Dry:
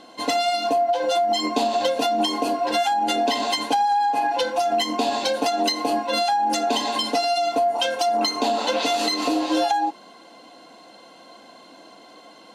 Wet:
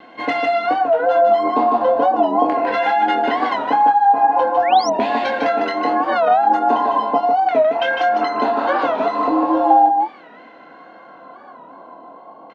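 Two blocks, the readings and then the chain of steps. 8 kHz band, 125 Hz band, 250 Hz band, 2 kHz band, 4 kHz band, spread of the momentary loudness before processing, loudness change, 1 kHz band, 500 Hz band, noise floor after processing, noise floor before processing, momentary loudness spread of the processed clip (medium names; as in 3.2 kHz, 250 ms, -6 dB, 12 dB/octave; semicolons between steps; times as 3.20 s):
under -10 dB, no reading, +4.0 dB, +6.0 dB, -8.0 dB, 2 LU, +5.5 dB, +7.0 dB, +5.5 dB, -42 dBFS, -48 dBFS, 5 LU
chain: LFO low-pass saw down 0.4 Hz 870–2100 Hz; vibrato 1.4 Hz 32 cents; doubling 25 ms -6 dB; on a send: delay 153 ms -5 dB; on the sum: painted sound rise, 4.62–4.91 s, 1.6–6.4 kHz -30 dBFS; warped record 45 rpm, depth 160 cents; trim +1.5 dB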